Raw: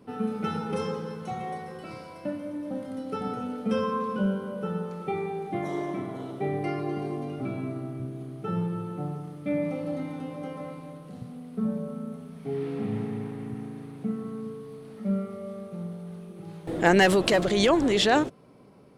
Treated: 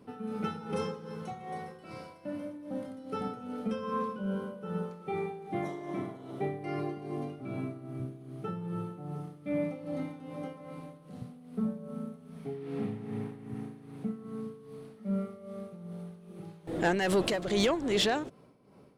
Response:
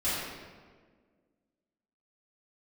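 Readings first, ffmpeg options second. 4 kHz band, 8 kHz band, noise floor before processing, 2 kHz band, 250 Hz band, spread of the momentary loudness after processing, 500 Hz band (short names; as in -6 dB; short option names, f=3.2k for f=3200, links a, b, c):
-5.5 dB, n/a, -45 dBFS, -8.0 dB, -6.0 dB, 16 LU, -6.0 dB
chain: -af "tremolo=f=2.5:d=0.68,asoftclip=type=tanh:threshold=-16.5dB,volume=-2dB"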